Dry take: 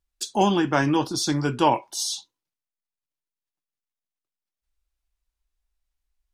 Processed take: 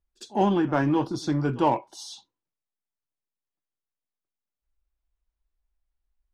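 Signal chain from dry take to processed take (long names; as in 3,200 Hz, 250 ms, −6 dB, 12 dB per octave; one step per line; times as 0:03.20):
low-pass filter 1,100 Hz 6 dB per octave
echo ahead of the sound 54 ms −24 dB
in parallel at −9 dB: gain into a clipping stage and back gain 26 dB
on the sum: level −2 dB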